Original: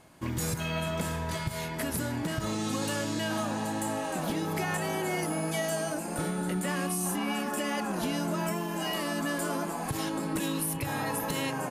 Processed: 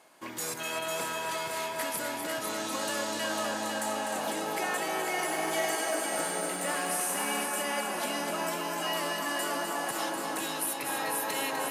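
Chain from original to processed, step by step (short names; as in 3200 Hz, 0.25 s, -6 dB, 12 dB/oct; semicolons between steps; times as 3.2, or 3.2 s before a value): HPF 450 Hz 12 dB/oct; multi-head echo 0.25 s, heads first and second, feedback 56%, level -7 dB; 5.09–7.46 lo-fi delay 98 ms, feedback 55%, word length 9-bit, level -6 dB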